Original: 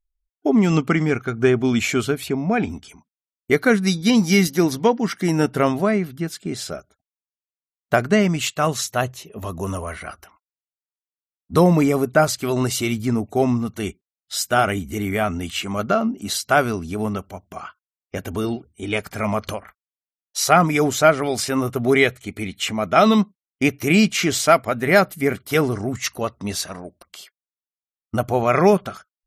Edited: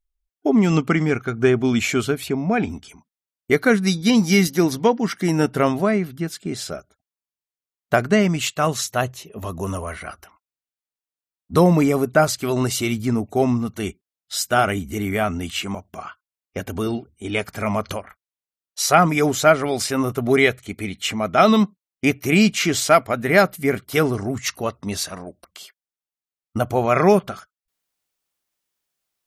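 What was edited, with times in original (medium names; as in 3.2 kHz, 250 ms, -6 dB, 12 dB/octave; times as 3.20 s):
15.75–17.33 s: delete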